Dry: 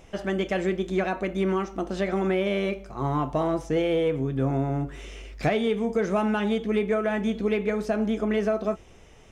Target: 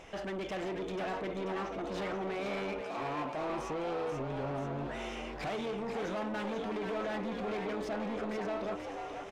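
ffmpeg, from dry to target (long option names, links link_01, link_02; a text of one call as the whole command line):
ffmpeg -i in.wav -filter_complex "[0:a]asettb=1/sr,asplit=3[link_01][link_02][link_03];[link_01]atrim=end=1.044[link_04];[link_02]atrim=start=1.04:end=1.82,asetpts=PTS-STARTPTS,afade=type=in:duration=0.004:curve=qsin,afade=type=out:start_time=0.776:duration=0.004:curve=qsin,acrossover=split=3700[link_05][link_06];[link_06]acompressor=threshold=-57dB:ratio=4:attack=1:release=60[link_07];[link_05][link_07]amix=inputs=2:normalize=0[link_08];[link_03]atrim=start=1.816[link_09];[link_04][link_08]acrossfade=duration=0.004:curve1=hsin:curve2=qsin[link_10];[link_10][link_09]acrossfade=duration=0.004:curve1=qsin:curve2=hsin,asettb=1/sr,asplit=3[link_11][link_12][link_13];[link_11]atrim=end=2.814[link_14];[link_12]atrim=start=2.81:end=3.5,asetpts=PTS-STARTPTS,afade=type=in:duration=0.004:curve=qsin,afade=type=out:start_time=0.686:duration=0.004:curve=qsin,highpass=frequency=170:width=0.5412,highpass=frequency=170:width=1.3066[link_15];[link_13]atrim=start=3.496[link_16];[link_14][link_15]acrossfade=duration=0.004:curve1=hsin:curve2=qsin[link_17];[link_17][link_16]acrossfade=duration=0.004:curve1=qsin:curve2=hsin,asoftclip=type=tanh:threshold=-31dB,asplit=2[link_18][link_19];[link_19]highpass=frequency=720:poles=1,volume=13dB,asoftclip=type=tanh:threshold=-31dB[link_20];[link_18][link_20]amix=inputs=2:normalize=0,lowpass=frequency=2700:poles=1,volume=-6dB,asplit=9[link_21][link_22][link_23][link_24][link_25][link_26][link_27][link_28][link_29];[link_22]adelay=486,afreqshift=90,volume=-6.5dB[link_30];[link_23]adelay=972,afreqshift=180,volume=-10.8dB[link_31];[link_24]adelay=1458,afreqshift=270,volume=-15.1dB[link_32];[link_25]adelay=1944,afreqshift=360,volume=-19.4dB[link_33];[link_26]adelay=2430,afreqshift=450,volume=-23.7dB[link_34];[link_27]adelay=2916,afreqshift=540,volume=-28dB[link_35];[link_28]adelay=3402,afreqshift=630,volume=-32.3dB[link_36];[link_29]adelay=3888,afreqshift=720,volume=-36.6dB[link_37];[link_21][link_30][link_31][link_32][link_33][link_34][link_35][link_36][link_37]amix=inputs=9:normalize=0,volume=-2dB" out.wav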